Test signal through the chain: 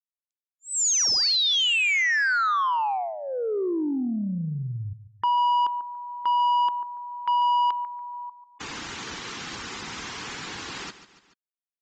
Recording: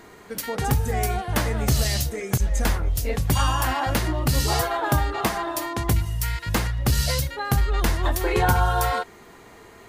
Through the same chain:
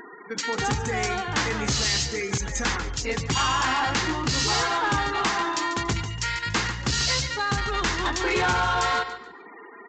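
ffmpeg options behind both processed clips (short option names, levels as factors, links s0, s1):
-filter_complex "[0:a]highpass=f=410:p=1,afftfilt=real='re*gte(hypot(re,im),0.00708)':imag='im*gte(hypot(re,im),0.00708)':win_size=1024:overlap=0.75,equalizer=f=610:w=3.1:g=-15,asplit=2[s0][s1];[s1]aecho=0:1:143|286|429:0.2|0.0579|0.0168[s2];[s0][s2]amix=inputs=2:normalize=0,acompressor=mode=upward:threshold=0.00447:ratio=2.5,aresample=16000,asoftclip=type=tanh:threshold=0.0501,aresample=44100,volume=2.37"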